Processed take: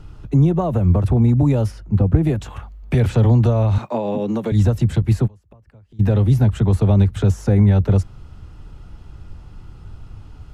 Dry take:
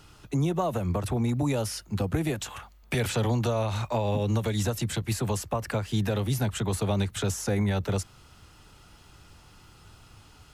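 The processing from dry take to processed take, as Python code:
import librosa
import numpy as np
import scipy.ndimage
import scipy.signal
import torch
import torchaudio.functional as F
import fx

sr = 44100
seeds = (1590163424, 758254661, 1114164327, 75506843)

y = fx.high_shelf(x, sr, hz=2900.0, db=-11.0, at=(1.7, 2.22), fade=0.02)
y = fx.highpass(y, sr, hz=200.0, slope=24, at=(3.78, 4.52))
y = fx.gate_flip(y, sr, shuts_db=-27.0, range_db=-30, at=(5.26, 5.99), fade=0.02)
y = fx.tilt_eq(y, sr, slope=-3.5)
y = y * librosa.db_to_amplitude(3.0)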